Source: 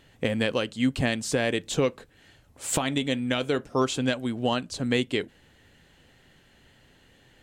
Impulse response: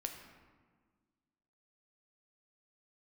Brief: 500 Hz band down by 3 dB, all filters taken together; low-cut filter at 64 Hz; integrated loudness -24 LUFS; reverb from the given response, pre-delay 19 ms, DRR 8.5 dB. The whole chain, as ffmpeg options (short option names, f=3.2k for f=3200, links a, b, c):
-filter_complex "[0:a]highpass=64,equalizer=f=500:t=o:g=-3.5,asplit=2[a][b];[1:a]atrim=start_sample=2205,adelay=19[c];[b][c]afir=irnorm=-1:irlink=0,volume=-7.5dB[d];[a][d]amix=inputs=2:normalize=0,volume=3.5dB"